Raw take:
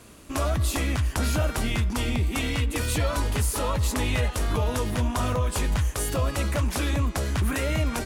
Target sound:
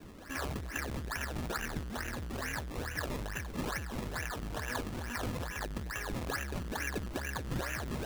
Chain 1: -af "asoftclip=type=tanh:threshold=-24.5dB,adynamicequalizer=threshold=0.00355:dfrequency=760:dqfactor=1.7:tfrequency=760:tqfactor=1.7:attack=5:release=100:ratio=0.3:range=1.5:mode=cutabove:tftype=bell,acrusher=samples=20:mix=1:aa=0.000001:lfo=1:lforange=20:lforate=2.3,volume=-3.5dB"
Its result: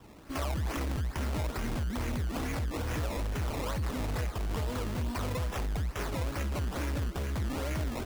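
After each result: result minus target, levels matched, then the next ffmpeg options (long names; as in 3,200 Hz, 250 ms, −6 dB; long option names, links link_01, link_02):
2,000 Hz band −7.5 dB; soft clipping: distortion −7 dB
-af "asoftclip=type=tanh:threshold=-24.5dB,adynamicequalizer=threshold=0.00355:dfrequency=760:dqfactor=1.7:tfrequency=760:tqfactor=1.7:attack=5:release=100:ratio=0.3:range=1.5:mode=cutabove:tftype=bell,lowpass=frequency=1700:width_type=q:width=13,acrusher=samples=20:mix=1:aa=0.000001:lfo=1:lforange=20:lforate=2.3,volume=-3.5dB"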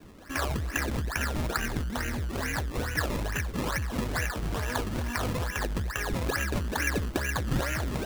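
soft clipping: distortion −7 dB
-af "asoftclip=type=tanh:threshold=-36dB,adynamicequalizer=threshold=0.00355:dfrequency=760:dqfactor=1.7:tfrequency=760:tqfactor=1.7:attack=5:release=100:ratio=0.3:range=1.5:mode=cutabove:tftype=bell,lowpass=frequency=1700:width_type=q:width=13,acrusher=samples=20:mix=1:aa=0.000001:lfo=1:lforange=20:lforate=2.3,volume=-3.5dB"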